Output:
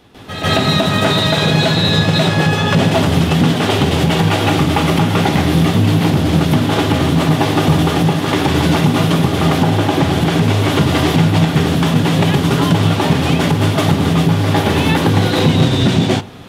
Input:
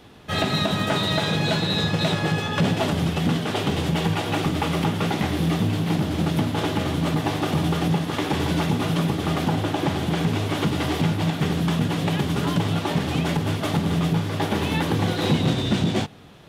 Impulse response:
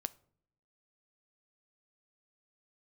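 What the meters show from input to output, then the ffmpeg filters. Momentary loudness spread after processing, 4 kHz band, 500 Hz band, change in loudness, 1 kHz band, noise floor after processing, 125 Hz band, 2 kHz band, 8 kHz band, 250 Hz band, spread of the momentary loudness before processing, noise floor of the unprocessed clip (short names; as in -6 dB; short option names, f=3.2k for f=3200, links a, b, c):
2 LU, +9.5 dB, +9.5 dB, +9.5 dB, +9.5 dB, -18 dBFS, +10.0 dB, +9.5 dB, +9.5 dB, +9.0 dB, 2 LU, -29 dBFS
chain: -filter_complex "[0:a]alimiter=limit=-15dB:level=0:latency=1:release=224,asplit=2[a][b];[1:a]atrim=start_sample=2205,adelay=146[c];[b][c]afir=irnorm=-1:irlink=0,volume=12.5dB[d];[a][d]amix=inputs=2:normalize=0"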